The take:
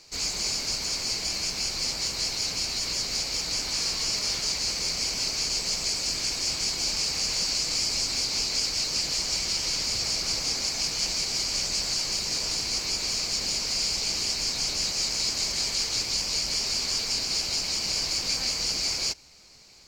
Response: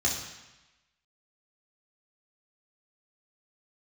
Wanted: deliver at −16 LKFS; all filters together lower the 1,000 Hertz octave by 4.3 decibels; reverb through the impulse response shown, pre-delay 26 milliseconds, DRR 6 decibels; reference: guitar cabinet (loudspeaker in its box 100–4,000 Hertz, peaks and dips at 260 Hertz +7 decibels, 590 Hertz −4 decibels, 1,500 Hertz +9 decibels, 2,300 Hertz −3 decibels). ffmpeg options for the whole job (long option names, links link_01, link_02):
-filter_complex "[0:a]equalizer=frequency=1000:width_type=o:gain=-8,asplit=2[link_01][link_02];[1:a]atrim=start_sample=2205,adelay=26[link_03];[link_02][link_03]afir=irnorm=-1:irlink=0,volume=-15dB[link_04];[link_01][link_04]amix=inputs=2:normalize=0,highpass=100,equalizer=frequency=260:width_type=q:width=4:gain=7,equalizer=frequency=590:width_type=q:width=4:gain=-4,equalizer=frequency=1500:width_type=q:width=4:gain=9,equalizer=frequency=2300:width_type=q:width=4:gain=-3,lowpass=frequency=4000:width=0.5412,lowpass=frequency=4000:width=1.3066,volume=15.5dB"